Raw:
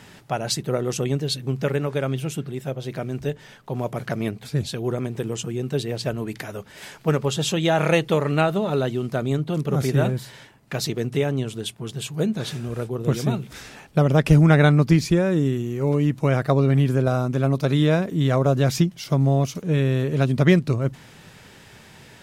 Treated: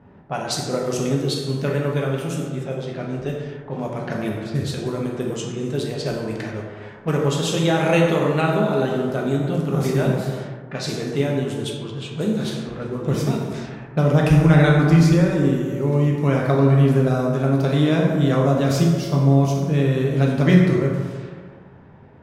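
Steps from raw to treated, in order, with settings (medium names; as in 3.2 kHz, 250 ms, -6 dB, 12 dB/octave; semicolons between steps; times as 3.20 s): plate-style reverb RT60 1.8 s, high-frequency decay 0.5×, DRR -2 dB; level-controlled noise filter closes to 730 Hz, open at -18.5 dBFS; trim -2.5 dB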